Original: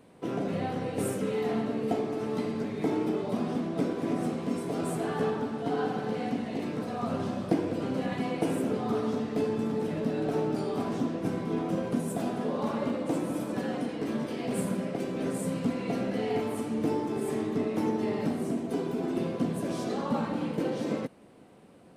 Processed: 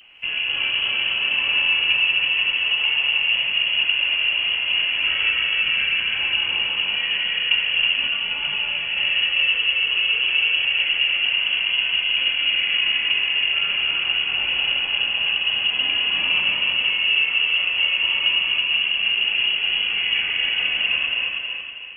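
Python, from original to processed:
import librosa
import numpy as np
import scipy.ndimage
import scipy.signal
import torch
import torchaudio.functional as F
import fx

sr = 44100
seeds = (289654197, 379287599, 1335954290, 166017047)

p1 = fx.rider(x, sr, range_db=10, speed_s=0.5)
p2 = x + (p1 * 10.0 ** (-2.0 / 20.0))
p3 = fx.vibrato(p2, sr, rate_hz=0.84, depth_cents=56.0)
p4 = p3 + fx.echo_feedback(p3, sr, ms=322, feedback_pct=41, wet_db=-3.0, dry=0)
p5 = fx.freq_invert(p4, sr, carrier_hz=3100)
p6 = fx.rev_gated(p5, sr, seeds[0], gate_ms=290, shape='rising', drr_db=2.0)
y = fx.detune_double(p6, sr, cents=fx.line((8.07, 12.0), (8.96, 24.0)), at=(8.07, 8.96), fade=0.02)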